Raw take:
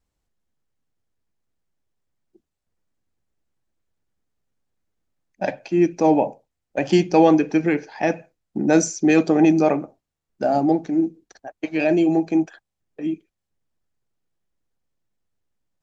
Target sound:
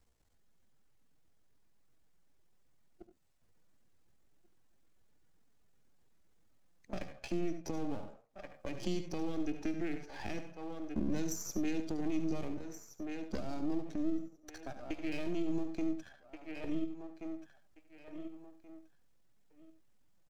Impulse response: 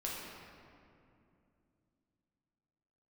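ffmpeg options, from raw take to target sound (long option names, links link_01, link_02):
-filter_complex "[0:a]aeval=exprs='if(lt(val(0),0),0.251*val(0),val(0))':channel_layout=same,asplit=2[link_01][link_02];[link_02]aecho=0:1:1115|2230:0.0708|0.0113[link_03];[link_01][link_03]amix=inputs=2:normalize=0,acompressor=threshold=-44dB:ratio=2,alimiter=level_in=2.5dB:limit=-24dB:level=0:latency=1:release=270,volume=-2.5dB,asplit=2[link_04][link_05];[link_05]aecho=0:1:59|78:0.282|0.158[link_06];[link_04][link_06]amix=inputs=2:normalize=0,atempo=0.78,acrossover=split=320|3000[link_07][link_08][link_09];[link_08]acompressor=threshold=-51dB:ratio=6[link_10];[link_07][link_10][link_09]amix=inputs=3:normalize=0,volume=5.5dB"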